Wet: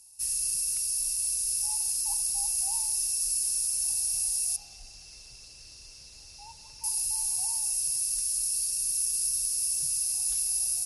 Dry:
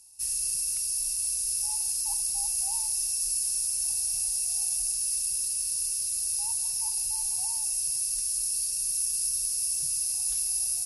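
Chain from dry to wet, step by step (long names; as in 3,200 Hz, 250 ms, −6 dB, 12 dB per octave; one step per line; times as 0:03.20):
0:04.56–0:06.84: high-frequency loss of the air 190 metres
hum removal 435 Hz, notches 40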